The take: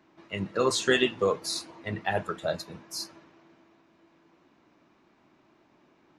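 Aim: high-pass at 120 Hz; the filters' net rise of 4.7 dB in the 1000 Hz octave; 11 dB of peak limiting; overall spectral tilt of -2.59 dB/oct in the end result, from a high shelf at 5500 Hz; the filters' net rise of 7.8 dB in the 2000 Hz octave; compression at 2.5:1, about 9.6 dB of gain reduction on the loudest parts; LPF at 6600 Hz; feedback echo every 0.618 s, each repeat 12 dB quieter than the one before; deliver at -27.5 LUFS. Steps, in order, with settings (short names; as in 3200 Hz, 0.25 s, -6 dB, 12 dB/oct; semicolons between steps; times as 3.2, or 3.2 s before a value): HPF 120 Hz; LPF 6600 Hz; bell 1000 Hz +3.5 dB; bell 2000 Hz +8 dB; high shelf 5500 Hz +4.5 dB; compressor 2.5:1, threshold -28 dBFS; limiter -23 dBFS; feedback echo 0.618 s, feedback 25%, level -12 dB; gain +7.5 dB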